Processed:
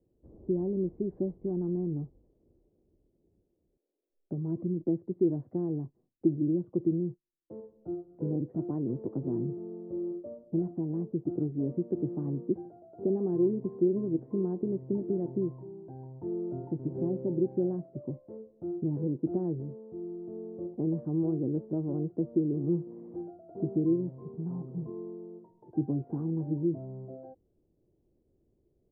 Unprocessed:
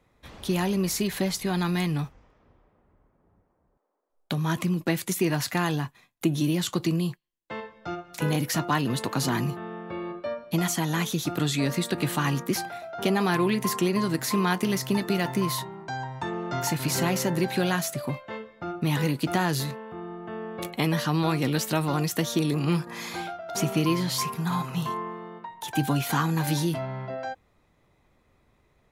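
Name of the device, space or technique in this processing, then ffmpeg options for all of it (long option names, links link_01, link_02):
under water: -filter_complex "[0:a]lowpass=frequency=530:width=0.5412,lowpass=frequency=530:width=1.3066,equalizer=frequency=350:width_type=o:width=0.5:gain=9,asettb=1/sr,asplit=3[link_01][link_02][link_03];[link_01]atrim=end=8.694[link_04];[link_02]atrim=start=8.69:end=9.21,asetpts=PTS-STARTPTS,afade=type=in:duration=0.004:curve=qsin,afade=type=out:start_time=0.516:duration=0.004:curve=qsin,highshelf=frequency=3000:gain=11[link_05];[link_03]atrim=start=9.206[link_06];[link_04][link_05]acrossfade=duration=0.004:curve1=hsin:curve2=qsin[link_07];[link_07][link_06]acrossfade=duration=0.004:curve1=qsin:curve2=hsin,volume=-7.5dB"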